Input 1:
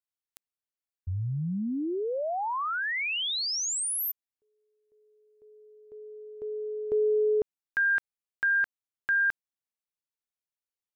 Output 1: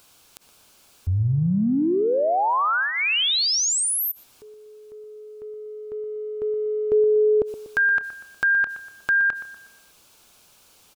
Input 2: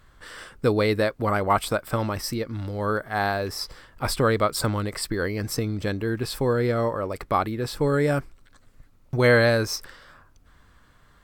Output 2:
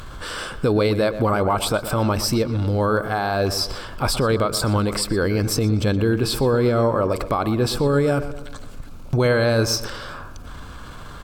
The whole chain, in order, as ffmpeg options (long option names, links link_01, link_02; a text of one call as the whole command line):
ffmpeg -i in.wav -filter_complex "[0:a]equalizer=frequency=1900:width_type=o:width=0.22:gain=-13.5,asplit=2[link_01][link_02];[link_02]acompressor=mode=upward:threshold=-23dB:ratio=2.5:attack=0.89:release=32:knee=2.83:detection=peak,volume=-2dB[link_03];[link_01][link_03]amix=inputs=2:normalize=0,alimiter=limit=-14dB:level=0:latency=1:release=78,highshelf=frequency=12000:gain=-7,asplit=2[link_04][link_05];[link_05]adelay=121,lowpass=frequency=2600:poles=1,volume=-12dB,asplit=2[link_06][link_07];[link_07]adelay=121,lowpass=frequency=2600:poles=1,volume=0.49,asplit=2[link_08][link_09];[link_09]adelay=121,lowpass=frequency=2600:poles=1,volume=0.49,asplit=2[link_10][link_11];[link_11]adelay=121,lowpass=frequency=2600:poles=1,volume=0.49,asplit=2[link_12][link_13];[link_13]adelay=121,lowpass=frequency=2600:poles=1,volume=0.49[link_14];[link_04][link_06][link_08][link_10][link_12][link_14]amix=inputs=6:normalize=0,volume=3dB" out.wav